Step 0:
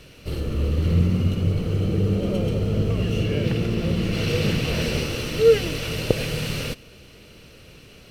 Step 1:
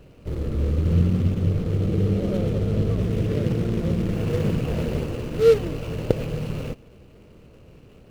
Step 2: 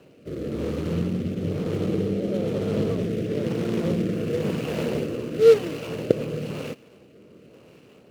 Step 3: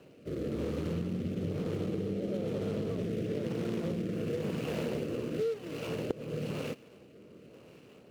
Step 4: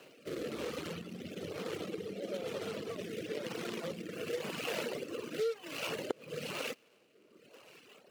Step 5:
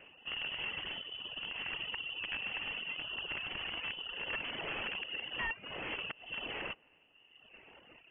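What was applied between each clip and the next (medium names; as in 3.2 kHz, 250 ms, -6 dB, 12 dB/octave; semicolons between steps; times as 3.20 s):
median filter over 25 samples
high-pass 210 Hz 12 dB/octave; rotary cabinet horn 1 Hz; trim +4 dB
compression 16:1, threshold -26 dBFS, peak gain reduction 17.5 dB; trim -3.5 dB
reverb removal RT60 1.9 s; high-pass 1.2 kHz 6 dB/octave; trim +8.5 dB
integer overflow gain 30.5 dB; frequency inversion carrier 3.2 kHz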